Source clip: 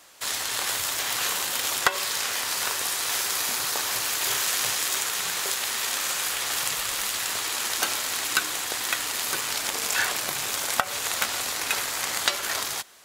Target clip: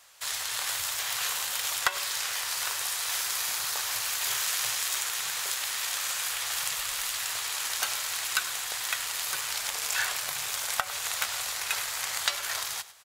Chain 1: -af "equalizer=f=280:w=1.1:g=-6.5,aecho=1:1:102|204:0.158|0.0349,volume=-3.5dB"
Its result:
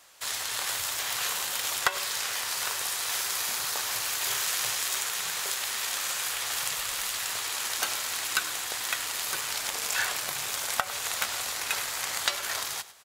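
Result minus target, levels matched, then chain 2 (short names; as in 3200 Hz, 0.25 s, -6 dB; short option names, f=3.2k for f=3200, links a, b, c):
250 Hz band +7.5 dB
-af "equalizer=f=280:w=1.1:g=-17.5,aecho=1:1:102|204:0.158|0.0349,volume=-3.5dB"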